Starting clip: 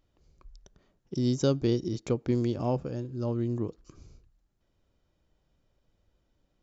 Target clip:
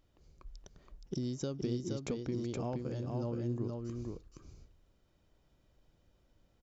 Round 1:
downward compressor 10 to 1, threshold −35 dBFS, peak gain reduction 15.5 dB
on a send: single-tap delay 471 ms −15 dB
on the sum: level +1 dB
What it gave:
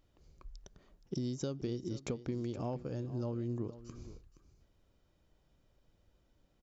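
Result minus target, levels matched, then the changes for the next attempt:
echo-to-direct −11.5 dB
change: single-tap delay 471 ms −3.5 dB

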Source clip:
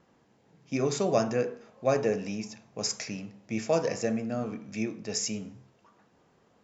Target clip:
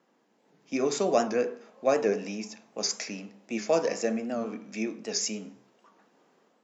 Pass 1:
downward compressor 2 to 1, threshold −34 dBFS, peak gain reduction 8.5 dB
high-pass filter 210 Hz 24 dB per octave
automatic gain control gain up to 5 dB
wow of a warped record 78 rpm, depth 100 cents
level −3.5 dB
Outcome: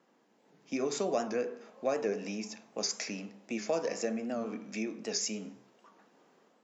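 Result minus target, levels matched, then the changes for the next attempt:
downward compressor: peak gain reduction +8.5 dB
remove: downward compressor 2 to 1, threshold −34 dBFS, peak gain reduction 8.5 dB

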